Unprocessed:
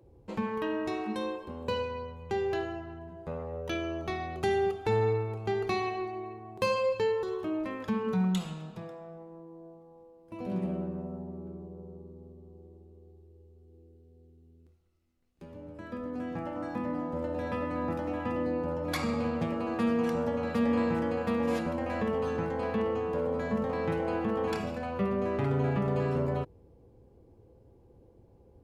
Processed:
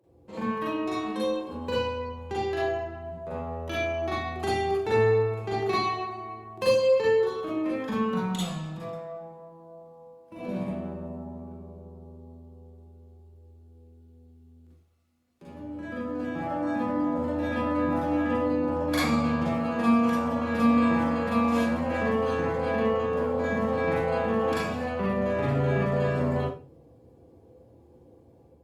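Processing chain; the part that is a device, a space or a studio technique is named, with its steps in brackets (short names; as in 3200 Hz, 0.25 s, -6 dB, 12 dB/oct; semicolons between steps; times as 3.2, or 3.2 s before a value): far-field microphone of a smart speaker (reverb RT60 0.30 s, pre-delay 37 ms, DRR -6.5 dB; HPF 130 Hz 12 dB/oct; AGC gain up to 4.5 dB; gain -6.5 dB; Opus 48 kbps 48000 Hz)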